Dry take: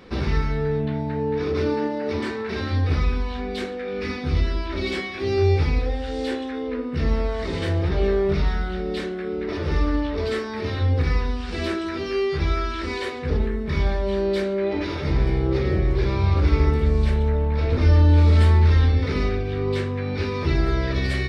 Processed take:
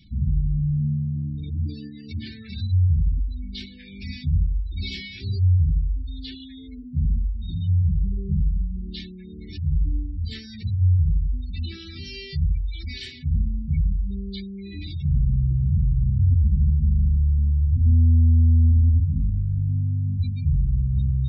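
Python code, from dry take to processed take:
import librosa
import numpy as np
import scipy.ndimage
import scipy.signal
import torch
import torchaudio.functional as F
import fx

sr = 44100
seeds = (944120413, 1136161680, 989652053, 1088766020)

y = scipy.signal.sosfilt(scipy.signal.cheby1(2, 1.0, [140.0, 3500.0], 'bandstop', fs=sr, output='sos'), x)
y = 10.0 ** (-18.0 / 20.0) * np.tanh(y / 10.0 ** (-18.0 / 20.0))
y = fx.dynamic_eq(y, sr, hz=130.0, q=0.8, threshold_db=-33.0, ratio=4.0, max_db=5)
y = fx.spec_gate(y, sr, threshold_db=-20, keep='strong')
y = y * 10.0 ** (2.0 / 20.0)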